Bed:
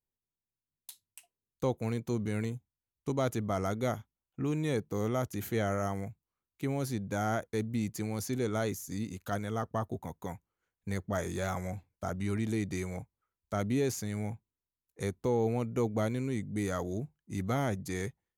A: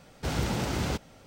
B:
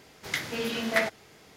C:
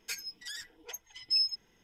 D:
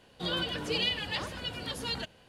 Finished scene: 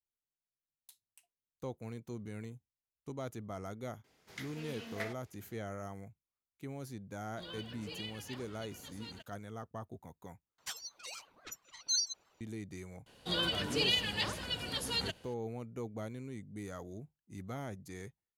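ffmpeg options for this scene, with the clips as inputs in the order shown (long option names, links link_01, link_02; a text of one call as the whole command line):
ffmpeg -i bed.wav -i cue0.wav -i cue1.wav -i cue2.wav -i cue3.wav -filter_complex "[4:a]asplit=2[link_01][link_02];[0:a]volume=-11dB[link_03];[link_01]aeval=exprs='sgn(val(0))*max(abs(val(0))-0.00168,0)':channel_layout=same[link_04];[3:a]aeval=exprs='val(0)*sin(2*PI*830*n/s+830*0.4/5.9*sin(2*PI*5.9*n/s))':channel_layout=same[link_05];[link_02]highshelf=frequency=4800:gain=7.5[link_06];[link_03]asplit=2[link_07][link_08];[link_07]atrim=end=10.584[link_09];[link_05]atrim=end=1.83,asetpts=PTS-STARTPTS,volume=-1.5dB[link_10];[link_08]atrim=start=12.406[link_11];[2:a]atrim=end=1.56,asetpts=PTS-STARTPTS,volume=-16dB,afade=type=in:duration=0.004:curve=hsin,afade=type=out:start_time=1.556:duration=0.004:curve=hsin,adelay=4040[link_12];[link_04]atrim=end=2.28,asetpts=PTS-STARTPTS,volume=-15dB,afade=type=in:duration=0.004:curve=hsin,afade=type=out:start_time=2.276:duration=0.004:curve=hsin,adelay=7170[link_13];[link_06]atrim=end=2.28,asetpts=PTS-STARTPTS,volume=-2.5dB,afade=type=in:duration=0.004:curve=hsin,afade=type=out:start_time=2.276:duration=0.004:curve=hsin,adelay=13060[link_14];[link_09][link_10]acrossfade=duration=0.004:curve1=hsin:curve2=hsin[link_15];[link_15][link_11]acrossfade=duration=0.004:curve1=hsin:curve2=hsin[link_16];[link_16][link_12][link_13][link_14]amix=inputs=4:normalize=0" out.wav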